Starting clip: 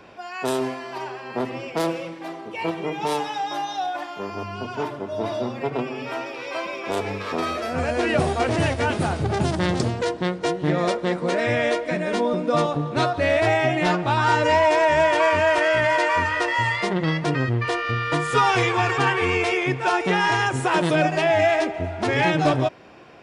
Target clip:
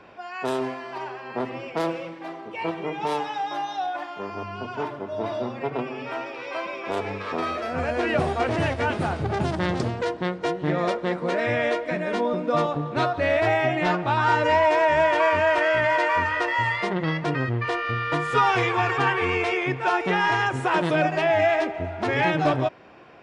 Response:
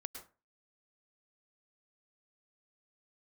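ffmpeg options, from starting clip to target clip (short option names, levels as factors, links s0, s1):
-af "lowpass=f=1600:p=1,tiltshelf=f=860:g=-3.5"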